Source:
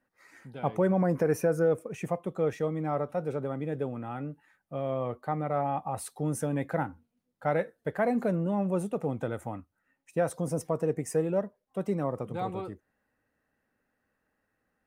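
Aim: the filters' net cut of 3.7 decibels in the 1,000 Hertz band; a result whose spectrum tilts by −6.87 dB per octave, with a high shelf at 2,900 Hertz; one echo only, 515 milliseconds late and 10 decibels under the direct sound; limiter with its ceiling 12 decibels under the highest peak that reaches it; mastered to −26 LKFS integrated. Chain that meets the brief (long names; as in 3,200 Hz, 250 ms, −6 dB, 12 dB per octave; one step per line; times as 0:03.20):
parametric band 1,000 Hz −4.5 dB
high-shelf EQ 2,900 Hz −9 dB
brickwall limiter −29 dBFS
single-tap delay 515 ms −10 dB
level +12.5 dB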